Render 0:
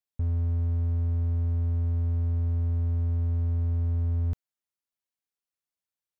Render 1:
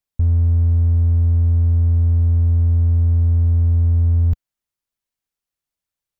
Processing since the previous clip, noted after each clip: low shelf 100 Hz +12 dB; gain +4.5 dB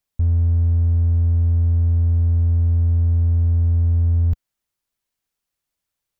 limiter -17.5 dBFS, peak gain reduction 7.5 dB; gain +4.5 dB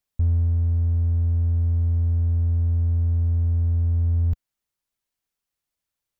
vocal rider 0.5 s; gain -4 dB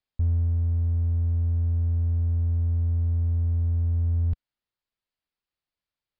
downsampling 11025 Hz; gain -3 dB

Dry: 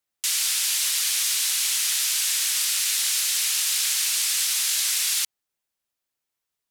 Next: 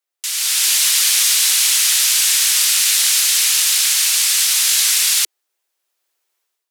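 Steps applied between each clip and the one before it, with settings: steep high-pass 320 Hz 96 dB/oct; AGC gain up to 12 dB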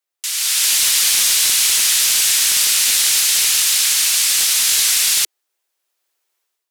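one-sided fold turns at -8 dBFS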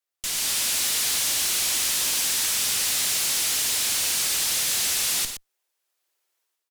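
tube stage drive 23 dB, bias 0.75; tapped delay 54/119 ms -11/-9 dB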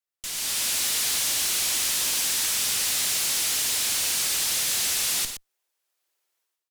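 AGC gain up to 4 dB; gain -5 dB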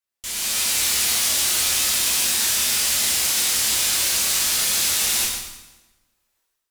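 reverb RT60 1.1 s, pre-delay 7 ms, DRR -3.5 dB

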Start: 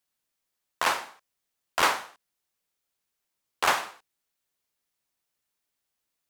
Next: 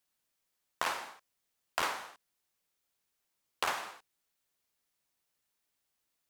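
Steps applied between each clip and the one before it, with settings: compressor 6:1, threshold -30 dBFS, peak gain reduction 12 dB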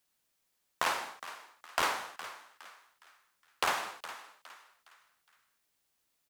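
in parallel at -5.5 dB: hard clip -29.5 dBFS, distortion -8 dB; on the sum: frequency-shifting echo 0.413 s, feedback 37%, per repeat +97 Hz, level -14 dB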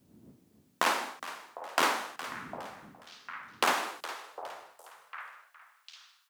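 wind noise 97 Hz -55 dBFS; high-pass sweep 240 Hz -> 3000 Hz, 3.74–6.17; delay with a stepping band-pass 0.753 s, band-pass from 610 Hz, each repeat 1.4 oct, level -9.5 dB; gain +3 dB

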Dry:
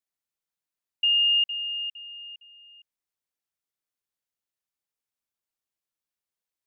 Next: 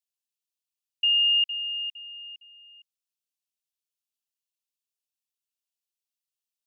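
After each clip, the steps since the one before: elliptic high-pass 2600 Hz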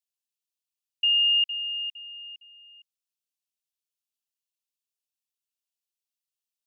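nothing audible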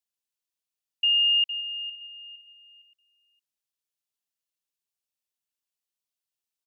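echo 0.574 s -19 dB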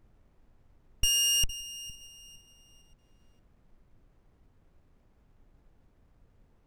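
in parallel at -9 dB: bit-crush 4-bit; on the sum: added noise brown -59 dBFS; running maximum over 9 samples

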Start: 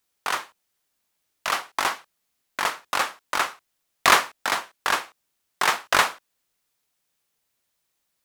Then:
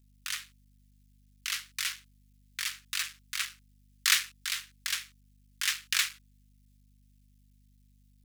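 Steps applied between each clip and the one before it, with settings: cycle switcher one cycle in 3, muted; Bessel high-pass 2800 Hz, order 6; hum 50 Hz, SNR 26 dB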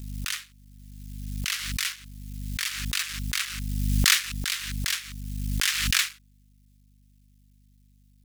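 backwards sustainer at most 28 dB/s; gain +2.5 dB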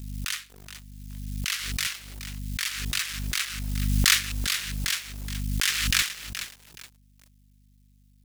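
lo-fi delay 0.423 s, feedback 35%, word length 6-bit, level -10.5 dB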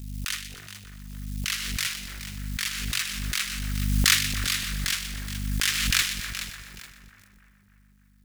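split-band echo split 1900 Hz, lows 0.295 s, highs 0.123 s, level -10 dB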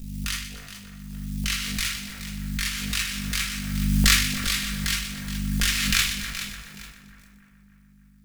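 shoebox room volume 360 m³, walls furnished, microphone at 1.7 m; gain -1 dB

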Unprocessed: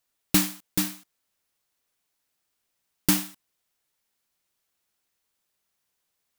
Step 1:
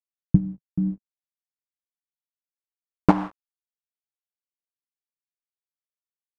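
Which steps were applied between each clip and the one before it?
companded quantiser 2-bit; low-pass sweep 130 Hz -> 1300 Hz, 0.23–3.64; gain +3 dB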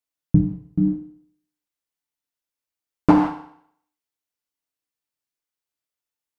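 limiter -7.5 dBFS, peak gain reduction 6 dB; FDN reverb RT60 0.65 s, low-frequency decay 0.9×, high-frequency decay 1×, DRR 2.5 dB; gain +4.5 dB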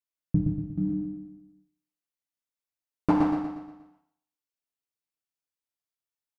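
feedback echo 0.119 s, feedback 48%, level -4 dB; gain -8.5 dB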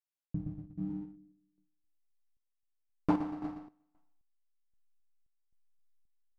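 in parallel at -4 dB: backlash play -27.5 dBFS; on the sum: random-step tremolo 3.8 Hz, depth 85%; gain -6 dB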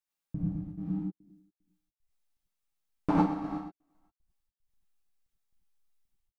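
step gate "xxxxx.x.x.xxx" 75 bpm -60 dB; non-linear reverb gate 0.12 s rising, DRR -4.5 dB

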